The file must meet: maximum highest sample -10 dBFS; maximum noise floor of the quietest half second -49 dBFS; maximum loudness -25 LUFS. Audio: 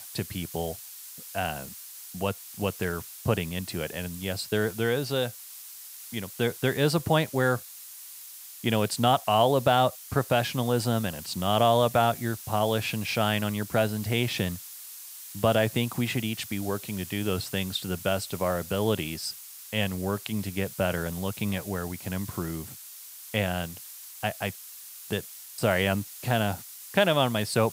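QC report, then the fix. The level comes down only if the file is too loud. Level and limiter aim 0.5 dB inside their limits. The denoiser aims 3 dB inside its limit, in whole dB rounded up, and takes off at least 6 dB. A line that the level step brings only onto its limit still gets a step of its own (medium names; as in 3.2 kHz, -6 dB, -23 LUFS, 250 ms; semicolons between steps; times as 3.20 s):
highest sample -8.0 dBFS: fail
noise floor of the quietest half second -45 dBFS: fail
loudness -28.0 LUFS: pass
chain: noise reduction 7 dB, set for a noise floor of -45 dBFS; peak limiter -10.5 dBFS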